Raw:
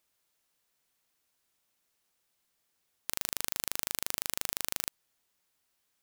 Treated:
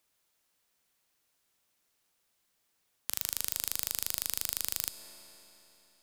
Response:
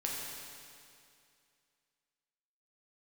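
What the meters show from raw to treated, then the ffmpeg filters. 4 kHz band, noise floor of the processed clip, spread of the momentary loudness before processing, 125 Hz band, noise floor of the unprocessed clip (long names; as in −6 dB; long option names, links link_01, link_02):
+0.5 dB, −77 dBFS, 5 LU, −1.5 dB, −78 dBFS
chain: -filter_complex "[0:a]asplit=2[link_01][link_02];[1:a]atrim=start_sample=2205,asetrate=29988,aresample=44100[link_03];[link_02][link_03]afir=irnorm=-1:irlink=0,volume=-15dB[link_04];[link_01][link_04]amix=inputs=2:normalize=0,acrossover=split=130|3000[link_05][link_06][link_07];[link_06]acompressor=threshold=-43dB:ratio=6[link_08];[link_05][link_08][link_07]amix=inputs=3:normalize=0"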